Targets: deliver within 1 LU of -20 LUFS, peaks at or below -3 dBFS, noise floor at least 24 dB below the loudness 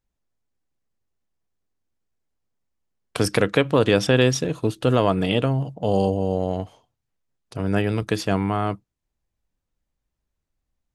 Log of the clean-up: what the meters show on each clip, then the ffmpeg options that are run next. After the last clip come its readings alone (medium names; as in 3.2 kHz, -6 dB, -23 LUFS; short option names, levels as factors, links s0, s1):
loudness -22.0 LUFS; peak level -3.5 dBFS; loudness target -20.0 LUFS
-> -af "volume=1.26,alimiter=limit=0.708:level=0:latency=1"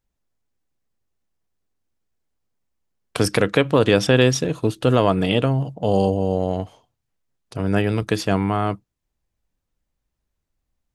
loudness -20.0 LUFS; peak level -3.0 dBFS; noise floor -79 dBFS